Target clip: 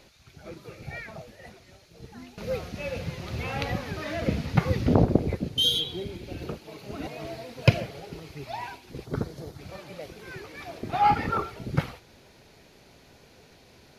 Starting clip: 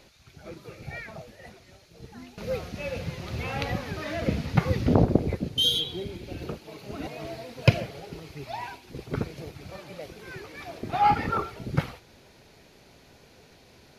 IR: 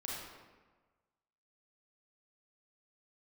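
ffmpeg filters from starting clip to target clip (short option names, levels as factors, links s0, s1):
-filter_complex "[0:a]asettb=1/sr,asplit=3[s0][s1][s2];[s0]atrim=end=9.054[s3];[s1]atrim=start=9.05:end=9.59,asetpts=PTS-STARTPTS,afade=t=in:d=0.004:c=qsin,afade=t=out:st=0.536:d=0.004:c=qsin,equalizer=f=2500:w=2.6:g=-13[s4];[s2]atrim=start=9.586[s5];[s3][s4]acrossfade=d=0.004:c1=hsin:c2=qsin[s6];[s6][s5]acrossfade=d=0.004:c1=qsin:c2=hsin"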